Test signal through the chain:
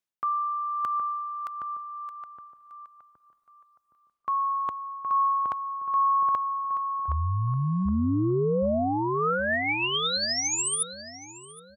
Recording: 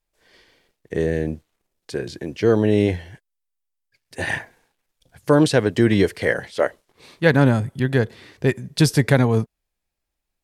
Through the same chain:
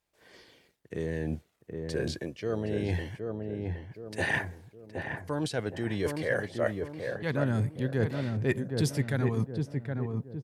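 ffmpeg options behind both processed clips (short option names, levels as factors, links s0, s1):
-filter_complex "[0:a]highpass=73,areverse,acompressor=threshold=0.0447:ratio=6,areverse,aphaser=in_gain=1:out_gain=1:delay=1.8:decay=0.31:speed=0.24:type=sinusoidal,asplit=2[s0][s1];[s1]adelay=768,lowpass=f=1100:p=1,volume=0.668,asplit=2[s2][s3];[s3]adelay=768,lowpass=f=1100:p=1,volume=0.45,asplit=2[s4][s5];[s5]adelay=768,lowpass=f=1100:p=1,volume=0.45,asplit=2[s6][s7];[s7]adelay=768,lowpass=f=1100:p=1,volume=0.45,asplit=2[s8][s9];[s9]adelay=768,lowpass=f=1100:p=1,volume=0.45,asplit=2[s10][s11];[s11]adelay=768,lowpass=f=1100:p=1,volume=0.45[s12];[s0][s2][s4][s6][s8][s10][s12]amix=inputs=7:normalize=0,volume=0.891"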